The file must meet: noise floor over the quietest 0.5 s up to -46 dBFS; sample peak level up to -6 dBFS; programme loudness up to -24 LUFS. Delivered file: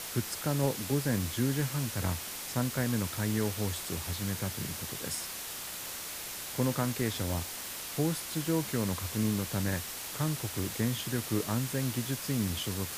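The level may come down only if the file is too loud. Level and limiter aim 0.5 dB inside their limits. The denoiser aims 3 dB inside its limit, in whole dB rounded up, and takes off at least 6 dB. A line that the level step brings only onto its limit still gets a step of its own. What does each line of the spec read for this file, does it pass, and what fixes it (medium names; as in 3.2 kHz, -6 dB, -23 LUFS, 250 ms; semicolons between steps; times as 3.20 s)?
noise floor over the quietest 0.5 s -40 dBFS: fail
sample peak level -14.5 dBFS: pass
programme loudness -32.5 LUFS: pass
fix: noise reduction 9 dB, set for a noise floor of -40 dBFS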